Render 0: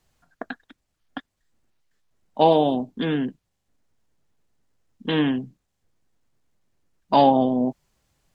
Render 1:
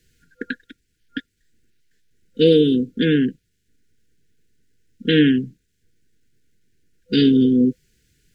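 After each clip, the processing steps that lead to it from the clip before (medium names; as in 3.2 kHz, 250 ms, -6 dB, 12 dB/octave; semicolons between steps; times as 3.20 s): FFT band-reject 500–1400 Hz; trim +7 dB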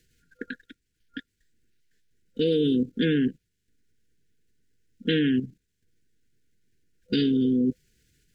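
level held to a coarse grid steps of 11 dB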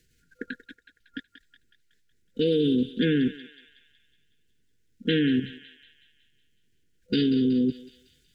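thinning echo 185 ms, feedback 57%, high-pass 1.1 kHz, level -10 dB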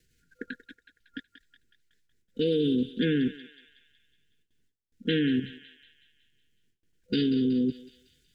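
gate with hold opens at -60 dBFS; trim -2.5 dB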